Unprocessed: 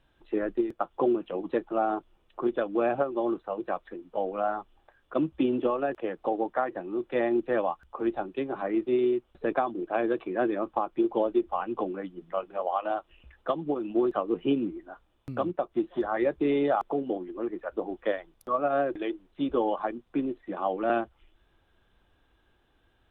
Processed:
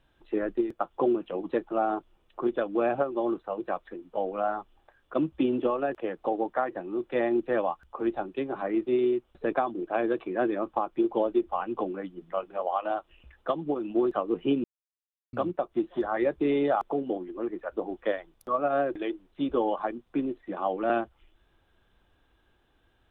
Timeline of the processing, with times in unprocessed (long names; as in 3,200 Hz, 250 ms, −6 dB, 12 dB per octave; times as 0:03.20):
0:14.64–0:15.33: silence